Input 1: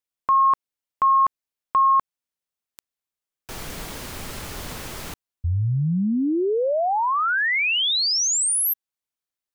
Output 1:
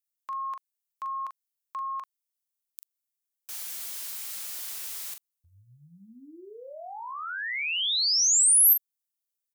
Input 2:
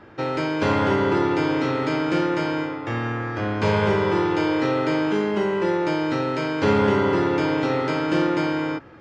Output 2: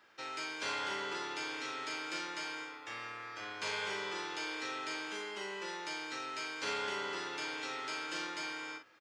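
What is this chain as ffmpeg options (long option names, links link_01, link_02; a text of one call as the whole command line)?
ffmpeg -i in.wav -filter_complex "[0:a]aderivative,asplit=2[link_01][link_02];[link_02]adelay=41,volume=-7dB[link_03];[link_01][link_03]amix=inputs=2:normalize=0" out.wav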